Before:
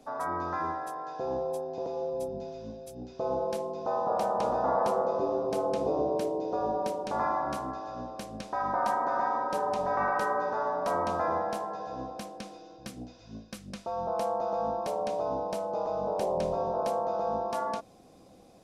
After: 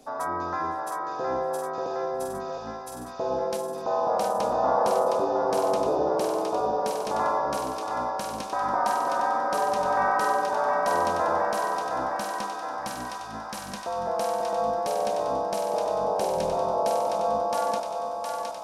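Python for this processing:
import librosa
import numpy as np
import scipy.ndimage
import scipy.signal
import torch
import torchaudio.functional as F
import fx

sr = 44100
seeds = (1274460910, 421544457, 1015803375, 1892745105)

p1 = fx.bass_treble(x, sr, bass_db=-3, treble_db=5)
p2 = p1 + fx.echo_thinned(p1, sr, ms=714, feedback_pct=75, hz=640.0, wet_db=-3, dry=0)
y = p2 * 10.0 ** (3.0 / 20.0)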